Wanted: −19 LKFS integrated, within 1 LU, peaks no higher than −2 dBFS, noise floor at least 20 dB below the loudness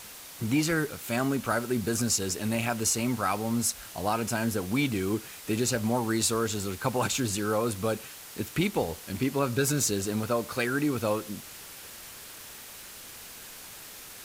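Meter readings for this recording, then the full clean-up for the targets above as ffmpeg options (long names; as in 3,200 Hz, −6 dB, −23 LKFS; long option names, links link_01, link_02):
background noise floor −45 dBFS; target noise floor −49 dBFS; integrated loudness −28.5 LKFS; sample peak −12.5 dBFS; target loudness −19.0 LKFS
→ -af "afftdn=noise_reduction=6:noise_floor=-45"
-af "volume=9.5dB"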